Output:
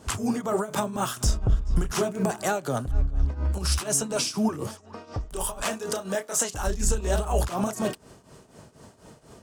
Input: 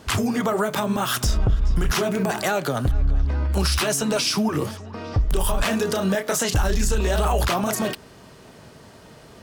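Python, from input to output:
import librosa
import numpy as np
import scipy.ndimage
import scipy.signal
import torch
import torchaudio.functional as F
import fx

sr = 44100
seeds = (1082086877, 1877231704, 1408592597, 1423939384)

y = fx.low_shelf(x, sr, hz=250.0, db=-11.5, at=(4.67, 6.67))
y = fx.tremolo_shape(y, sr, shape='triangle', hz=4.1, depth_pct=85)
y = fx.graphic_eq_10(y, sr, hz=(2000, 4000, 8000, 16000), db=(-5, -5, 7, -6))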